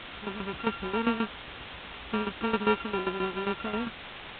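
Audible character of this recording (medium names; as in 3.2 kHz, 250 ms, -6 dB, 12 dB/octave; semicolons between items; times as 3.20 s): a buzz of ramps at a fixed pitch in blocks of 32 samples; tremolo saw down 7.5 Hz, depth 80%; a quantiser's noise floor 6-bit, dither triangular; A-law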